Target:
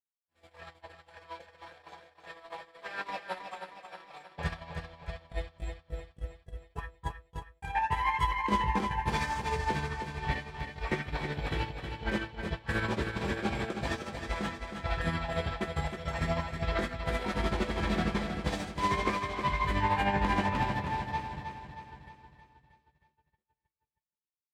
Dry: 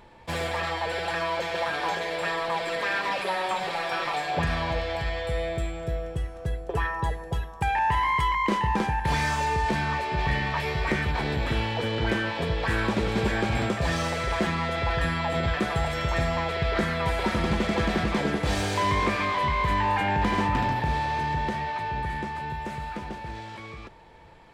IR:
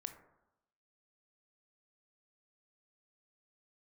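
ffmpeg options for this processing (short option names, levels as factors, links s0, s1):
-filter_complex "[0:a]bandreject=f=116:t=h:w=4,bandreject=f=232:t=h:w=4,bandreject=f=348:t=h:w=4,bandreject=f=464:t=h:w=4,bandreject=f=580:t=h:w=4,bandreject=f=696:t=h:w=4,bandreject=f=812:t=h:w=4,bandreject=f=928:t=h:w=4,bandreject=f=1044:t=h:w=4,bandreject=f=1160:t=h:w=4,bandreject=f=1276:t=h:w=4,bandreject=f=1392:t=h:w=4,bandreject=f=1508:t=h:w=4,bandreject=f=1624:t=h:w=4,bandreject=f=1740:t=h:w=4,bandreject=f=1856:t=h:w=4,bandreject=f=1972:t=h:w=4,bandreject=f=2088:t=h:w=4,bandreject=f=2204:t=h:w=4,bandreject=f=2320:t=h:w=4,bandreject=f=2436:t=h:w=4,bandreject=f=2552:t=h:w=4,bandreject=f=2668:t=h:w=4,bandreject=f=2784:t=h:w=4,bandreject=f=2900:t=h:w=4,bandreject=f=3016:t=h:w=4,bandreject=f=3132:t=h:w=4,bandreject=f=3248:t=h:w=4,bandreject=f=3364:t=h:w=4,bandreject=f=3480:t=h:w=4,bandreject=f=3596:t=h:w=4,bandreject=f=3712:t=h:w=4,bandreject=f=3828:t=h:w=4,bandreject=f=3944:t=h:w=4,bandreject=f=4060:t=h:w=4,bandreject=f=4176:t=h:w=4,bandreject=f=4292:t=h:w=4,bandreject=f=4408:t=h:w=4,flanger=delay=20:depth=6.6:speed=0.35,asettb=1/sr,asplit=3[s0][s1][s2];[s0]atrim=end=6.294[s3];[s1]atrim=start=6.29:end=7.23,asetpts=PTS-STARTPTS,afade=t=in:d=0.004:c=qsin,afade=t=out:st=0.936:d=0.004:c=qsin,adynamicequalizer=threshold=0.00708:dfrequency=720:dqfactor=0.94:tfrequency=720:tqfactor=0.94:attack=5:release=100:ratio=0.375:range=2:mode=cutabove:tftype=bell[s4];[s2]atrim=start=7.226[s5];[s3][s4]acrossfade=d=0.004:c1=hsin:c2=qsin[s6];[s6][s5]acrossfade=d=0.004:c1=qsin:c2=hsin,agate=range=0.00126:threshold=0.0398:ratio=16:detection=peak,asettb=1/sr,asplit=3[s7][s8][s9];[s7]atrim=end=4.534[s10];[s8]atrim=start=4.53:end=4.94,asetpts=PTS-STARTPTS,afade=t=in:d=0.004:c=qsin,afade=t=out:st=0.406:d=0.004:c=qsin,acompressor=threshold=0.01:ratio=6[s11];[s9]atrim=start=4.936[s12];[s10][s11]acrossfade=d=0.004:c1=hsin:c2=qsin[s13];[s13][s12]acrossfade=d=0.004:c1=qsin:c2=hsin,tremolo=f=13:d=0.55,aecho=1:1:316|632|948|1264|1580|1896:0.447|0.228|0.116|0.0593|0.0302|0.0154"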